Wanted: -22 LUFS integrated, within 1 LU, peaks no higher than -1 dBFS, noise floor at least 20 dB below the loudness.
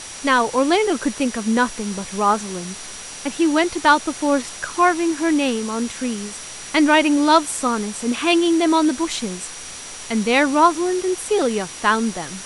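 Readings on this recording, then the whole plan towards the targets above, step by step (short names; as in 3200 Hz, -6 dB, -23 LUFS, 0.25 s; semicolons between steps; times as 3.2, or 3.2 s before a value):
steady tone 5800 Hz; tone level -39 dBFS; noise floor -35 dBFS; noise floor target -39 dBFS; loudness -19.0 LUFS; peak -1.5 dBFS; loudness target -22.0 LUFS
-> notch 5800 Hz, Q 30; denoiser 6 dB, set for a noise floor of -35 dBFS; gain -3 dB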